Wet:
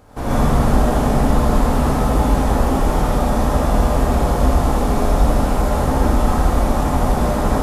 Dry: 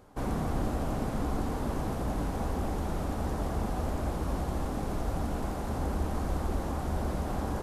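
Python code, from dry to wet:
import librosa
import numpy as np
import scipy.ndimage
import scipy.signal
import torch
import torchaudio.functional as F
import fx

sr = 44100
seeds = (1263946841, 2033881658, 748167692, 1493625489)

y = fx.notch(x, sr, hz=380.0, q=12.0)
y = y + 10.0 ** (-6.0 / 20.0) * np.pad(y, (int(80 * sr / 1000.0), 0))[:len(y)]
y = fx.rev_gated(y, sr, seeds[0], gate_ms=170, shape='rising', drr_db=-7.0)
y = y * librosa.db_to_amplitude(7.5)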